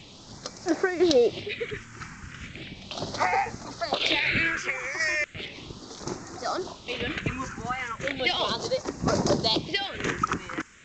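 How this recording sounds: tremolo saw down 1 Hz, depth 55%; a quantiser's noise floor 8-bit, dither triangular; phasing stages 4, 0.36 Hz, lowest notch 600–3100 Hz; G.722

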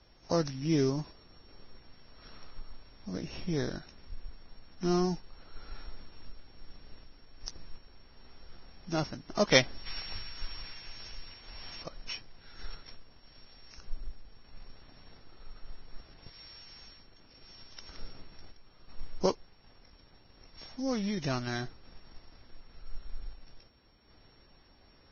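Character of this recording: a buzz of ramps at a fixed pitch in blocks of 8 samples; random-step tremolo 2.7 Hz; Vorbis

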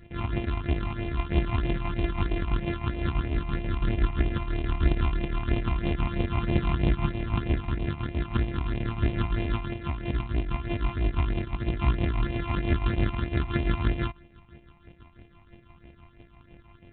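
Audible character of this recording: a buzz of ramps at a fixed pitch in blocks of 128 samples; tremolo triangle 6 Hz, depth 65%; phasing stages 8, 3.1 Hz, lowest notch 460–1300 Hz; G.726

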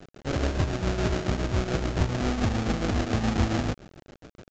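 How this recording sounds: aliases and images of a low sample rate 1000 Hz, jitter 20%; tremolo triangle 7.1 Hz, depth 60%; a quantiser's noise floor 8-bit, dither none; µ-law

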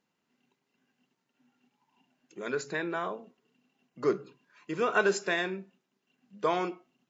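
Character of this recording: noise floor -81 dBFS; spectral tilt -4.0 dB/oct

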